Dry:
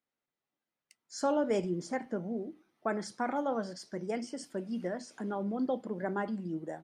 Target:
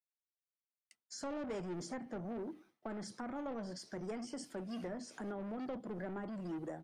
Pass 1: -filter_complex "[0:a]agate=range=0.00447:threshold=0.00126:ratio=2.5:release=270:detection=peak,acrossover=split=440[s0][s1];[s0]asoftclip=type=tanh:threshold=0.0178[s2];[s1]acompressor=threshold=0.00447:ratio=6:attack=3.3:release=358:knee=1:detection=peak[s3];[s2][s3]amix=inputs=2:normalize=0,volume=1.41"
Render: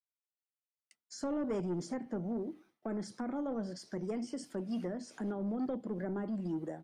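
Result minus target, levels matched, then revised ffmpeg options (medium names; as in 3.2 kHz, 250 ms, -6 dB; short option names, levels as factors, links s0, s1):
saturation: distortion -7 dB
-filter_complex "[0:a]agate=range=0.00447:threshold=0.00126:ratio=2.5:release=270:detection=peak,acrossover=split=440[s0][s1];[s0]asoftclip=type=tanh:threshold=0.00531[s2];[s1]acompressor=threshold=0.00447:ratio=6:attack=3.3:release=358:knee=1:detection=peak[s3];[s2][s3]amix=inputs=2:normalize=0,volume=1.41"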